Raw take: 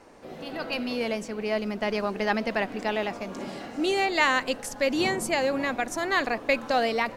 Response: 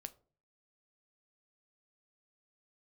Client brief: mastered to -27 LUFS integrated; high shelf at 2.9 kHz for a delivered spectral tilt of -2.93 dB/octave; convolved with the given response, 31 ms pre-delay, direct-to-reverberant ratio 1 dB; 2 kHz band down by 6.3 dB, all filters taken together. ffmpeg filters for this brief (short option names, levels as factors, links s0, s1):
-filter_complex "[0:a]equalizer=f=2000:t=o:g=-5.5,highshelf=f=2900:g=-5.5,asplit=2[s0][s1];[1:a]atrim=start_sample=2205,adelay=31[s2];[s1][s2]afir=irnorm=-1:irlink=0,volume=1.58[s3];[s0][s3]amix=inputs=2:normalize=0,volume=0.944"